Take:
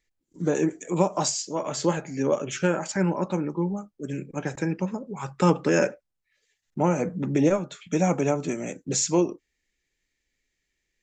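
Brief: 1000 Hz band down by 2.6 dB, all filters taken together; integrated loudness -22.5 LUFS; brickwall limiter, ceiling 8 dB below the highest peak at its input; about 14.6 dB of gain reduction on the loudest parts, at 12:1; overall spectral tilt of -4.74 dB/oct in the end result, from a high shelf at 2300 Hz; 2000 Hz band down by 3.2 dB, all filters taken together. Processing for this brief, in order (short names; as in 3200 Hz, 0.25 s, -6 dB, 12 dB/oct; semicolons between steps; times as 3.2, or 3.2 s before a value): bell 1000 Hz -3 dB; bell 2000 Hz -6.5 dB; high shelf 2300 Hz +6 dB; compressor 12:1, threshold -31 dBFS; gain +15.5 dB; limiter -12 dBFS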